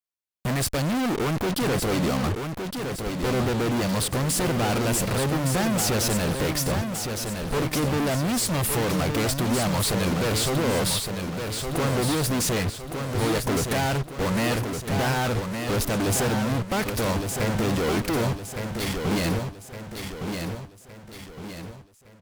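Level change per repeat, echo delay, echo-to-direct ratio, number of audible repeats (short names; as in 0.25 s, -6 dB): -7.0 dB, 1.163 s, -5.0 dB, 5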